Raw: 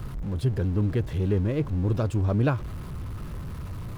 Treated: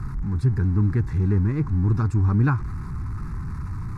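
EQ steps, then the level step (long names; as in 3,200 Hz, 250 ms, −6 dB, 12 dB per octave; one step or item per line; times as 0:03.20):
Butterworth band-reject 660 Hz, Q 5.4
high-frequency loss of the air 65 metres
phaser with its sweep stopped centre 1,300 Hz, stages 4
+5.5 dB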